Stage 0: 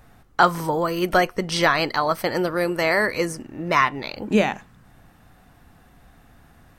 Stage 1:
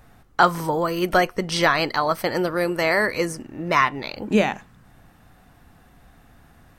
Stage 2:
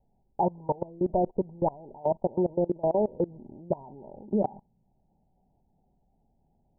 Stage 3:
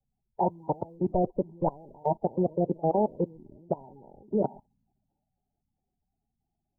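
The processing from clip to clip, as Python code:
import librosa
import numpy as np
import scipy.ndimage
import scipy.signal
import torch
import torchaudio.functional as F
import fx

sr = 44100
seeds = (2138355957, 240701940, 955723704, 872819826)

y1 = x
y2 = scipy.signal.sosfilt(scipy.signal.cheby1(10, 1.0, 940.0, 'lowpass', fs=sr, output='sos'), y1)
y2 = y2 + 0.34 * np.pad(y2, (int(5.1 * sr / 1000.0), 0))[:len(y2)]
y2 = fx.level_steps(y2, sr, step_db=23)
y3 = fx.spec_quant(y2, sr, step_db=30)
y3 = fx.band_widen(y3, sr, depth_pct=40)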